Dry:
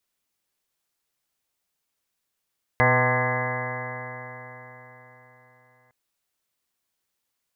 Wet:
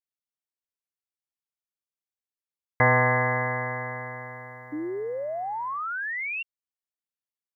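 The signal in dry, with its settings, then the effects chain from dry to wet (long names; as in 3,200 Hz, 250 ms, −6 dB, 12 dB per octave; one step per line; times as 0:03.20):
stiff-string partials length 3.11 s, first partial 123 Hz, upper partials −7.5/−15/−1.5/−3.5/−3/−5/−3/−7/−16/−14/−1.5/−12/0 dB, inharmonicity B 0.002, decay 4.18 s, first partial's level −22 dB
noise gate with hold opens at −49 dBFS
sound drawn into the spectrogram rise, 0:04.72–0:06.43, 290–2,800 Hz −31 dBFS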